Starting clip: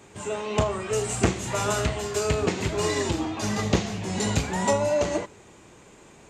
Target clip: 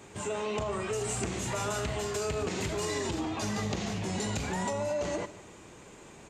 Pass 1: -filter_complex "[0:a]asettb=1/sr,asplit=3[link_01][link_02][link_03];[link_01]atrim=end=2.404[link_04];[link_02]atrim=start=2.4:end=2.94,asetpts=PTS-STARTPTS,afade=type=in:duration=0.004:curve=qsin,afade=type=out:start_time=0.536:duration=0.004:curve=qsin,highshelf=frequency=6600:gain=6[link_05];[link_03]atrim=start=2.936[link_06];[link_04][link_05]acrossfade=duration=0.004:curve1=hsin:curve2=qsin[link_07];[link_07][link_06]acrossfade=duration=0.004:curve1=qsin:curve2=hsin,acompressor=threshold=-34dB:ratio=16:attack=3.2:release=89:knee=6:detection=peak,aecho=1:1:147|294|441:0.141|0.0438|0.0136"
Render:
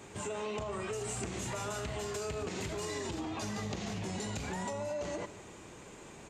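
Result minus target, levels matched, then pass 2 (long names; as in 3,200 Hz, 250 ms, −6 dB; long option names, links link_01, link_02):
downward compressor: peak gain reduction +5.5 dB
-filter_complex "[0:a]asettb=1/sr,asplit=3[link_01][link_02][link_03];[link_01]atrim=end=2.404[link_04];[link_02]atrim=start=2.4:end=2.94,asetpts=PTS-STARTPTS,afade=type=in:duration=0.004:curve=qsin,afade=type=out:start_time=0.536:duration=0.004:curve=qsin,highshelf=frequency=6600:gain=6[link_05];[link_03]atrim=start=2.936[link_06];[link_04][link_05]acrossfade=duration=0.004:curve1=hsin:curve2=qsin[link_07];[link_07][link_06]acrossfade=duration=0.004:curve1=qsin:curve2=hsin,acompressor=threshold=-28dB:ratio=16:attack=3.2:release=89:knee=6:detection=peak,aecho=1:1:147|294|441:0.141|0.0438|0.0136"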